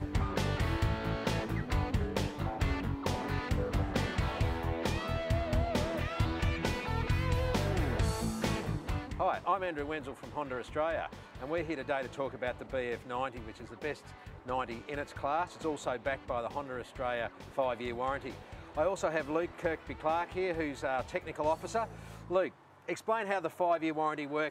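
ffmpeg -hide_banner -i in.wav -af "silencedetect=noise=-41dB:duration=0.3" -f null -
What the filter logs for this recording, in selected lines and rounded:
silence_start: 22.49
silence_end: 22.88 | silence_duration: 0.40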